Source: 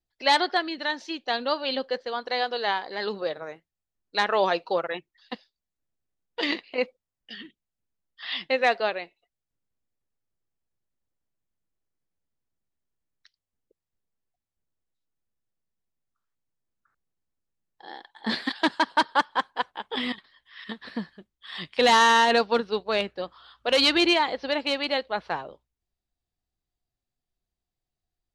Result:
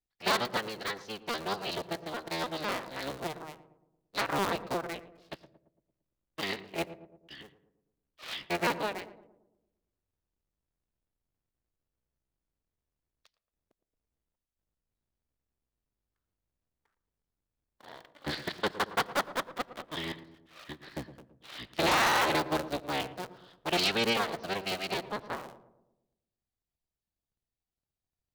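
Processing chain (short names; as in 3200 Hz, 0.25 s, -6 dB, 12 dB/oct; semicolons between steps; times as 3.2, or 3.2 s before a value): cycle switcher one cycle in 3, inverted; darkening echo 0.113 s, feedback 55%, low-pass 920 Hz, level -12.5 dB; on a send at -23 dB: reverb RT60 0.60 s, pre-delay 76 ms; on the sum: gain -7.5 dB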